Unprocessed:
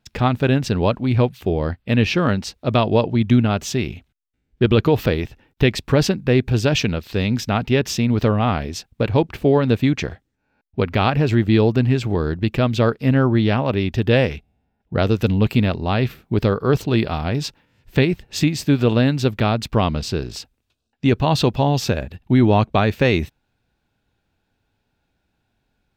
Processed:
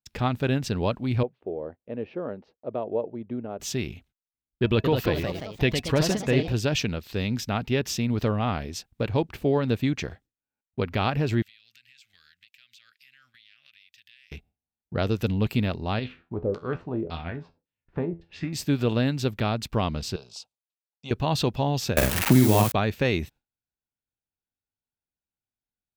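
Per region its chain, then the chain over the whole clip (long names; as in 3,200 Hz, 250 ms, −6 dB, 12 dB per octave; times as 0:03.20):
0:01.23–0:03.60: resonant band-pass 500 Hz, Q 1.8 + high-frequency loss of the air 200 metres
0:04.62–0:06.53: notch filter 630 Hz, Q 20 + hollow resonant body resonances 640/960/1,700/2,600 Hz, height 9 dB, ringing for 85 ms + delay with pitch and tempo change per echo 219 ms, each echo +2 semitones, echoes 3, each echo −6 dB
0:11.42–0:14.32: inverse Chebyshev high-pass filter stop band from 1,000 Hz + downward compressor 5 to 1, threshold −47 dBFS
0:15.99–0:18.53: auto-filter low-pass saw down 1.8 Hz 370–4,600 Hz + tuned comb filter 84 Hz, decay 0.25 s, mix 70%
0:20.16–0:21.11: band-pass filter 180–7,100 Hz + low-shelf EQ 490 Hz −7.5 dB + phaser with its sweep stopped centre 750 Hz, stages 4
0:21.97–0:22.72: spike at every zero crossing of −12 dBFS + double-tracking delay 47 ms −2 dB + multiband upward and downward compressor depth 100%
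whole clip: noise gate with hold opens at −42 dBFS; high-shelf EQ 5,600 Hz +5.5 dB; level −7.5 dB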